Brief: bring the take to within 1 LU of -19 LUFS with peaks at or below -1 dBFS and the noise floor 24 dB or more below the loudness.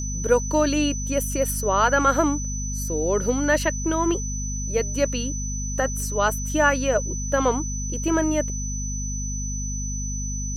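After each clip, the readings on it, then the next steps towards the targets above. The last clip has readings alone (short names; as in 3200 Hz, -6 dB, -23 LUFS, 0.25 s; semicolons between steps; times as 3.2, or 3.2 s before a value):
hum 50 Hz; harmonics up to 250 Hz; hum level -27 dBFS; steady tone 6000 Hz; tone level -31 dBFS; loudness -23.5 LUFS; peak -6.0 dBFS; loudness target -19.0 LUFS
-> de-hum 50 Hz, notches 5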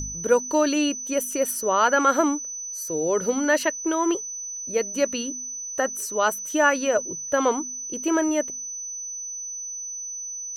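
hum none; steady tone 6000 Hz; tone level -31 dBFS
-> notch 6000 Hz, Q 30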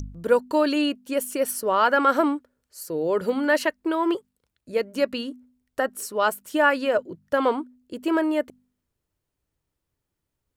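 steady tone none; loudness -24.0 LUFS; peak -6.5 dBFS; loudness target -19.0 LUFS
-> gain +5 dB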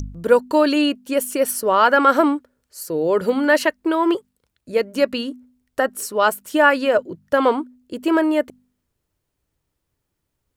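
loudness -19.0 LUFS; peak -1.5 dBFS; noise floor -77 dBFS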